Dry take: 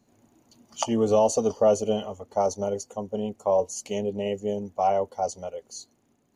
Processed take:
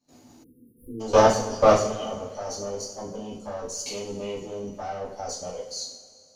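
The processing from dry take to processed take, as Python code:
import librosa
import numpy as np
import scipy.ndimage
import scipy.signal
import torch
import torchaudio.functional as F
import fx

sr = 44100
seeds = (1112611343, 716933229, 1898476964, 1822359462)

y = fx.diode_clip(x, sr, knee_db=-23.5)
y = fx.peak_eq(y, sr, hz=4900.0, db=13.0, octaves=0.74)
y = fx.level_steps(y, sr, step_db=21)
y = fx.rev_double_slope(y, sr, seeds[0], early_s=0.51, late_s=2.4, knee_db=-18, drr_db=-9.5)
y = fx.spec_erase(y, sr, start_s=0.44, length_s=0.56, low_hz=520.0, high_hz=9600.0)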